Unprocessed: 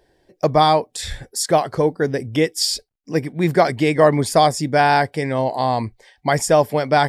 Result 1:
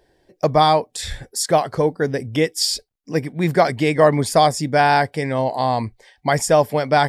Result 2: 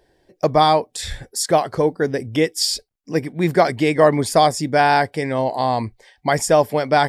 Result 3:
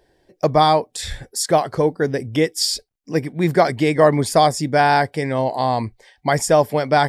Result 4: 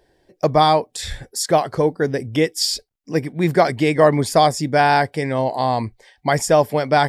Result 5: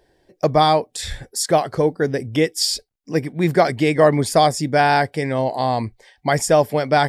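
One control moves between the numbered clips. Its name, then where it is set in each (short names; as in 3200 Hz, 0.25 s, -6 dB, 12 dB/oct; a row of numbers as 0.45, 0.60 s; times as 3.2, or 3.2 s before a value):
dynamic EQ, frequency: 350, 140, 2700, 9000, 980 Hz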